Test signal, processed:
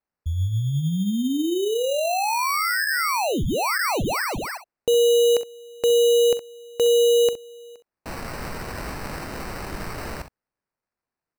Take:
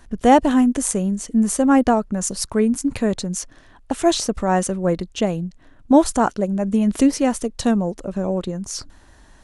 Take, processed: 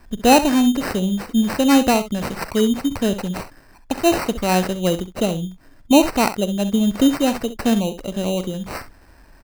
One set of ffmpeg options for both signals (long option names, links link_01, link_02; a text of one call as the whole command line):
ffmpeg -i in.wav -filter_complex "[0:a]acrossover=split=9000[link_01][link_02];[link_02]acompressor=threshold=-37dB:ratio=4:attack=1:release=60[link_03];[link_01][link_03]amix=inputs=2:normalize=0,aecho=1:1:44|65:0.126|0.237,acrusher=samples=13:mix=1:aa=0.000001" out.wav